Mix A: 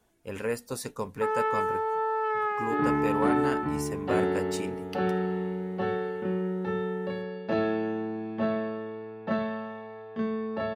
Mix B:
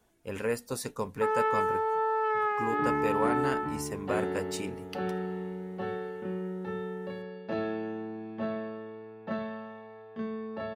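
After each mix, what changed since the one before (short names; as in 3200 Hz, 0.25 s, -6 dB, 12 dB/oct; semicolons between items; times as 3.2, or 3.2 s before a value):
second sound -5.5 dB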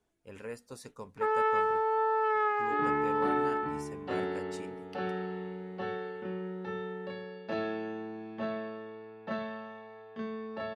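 speech -11.0 dB; second sound: add tilt +1.5 dB/oct; master: add LPF 10000 Hz 12 dB/oct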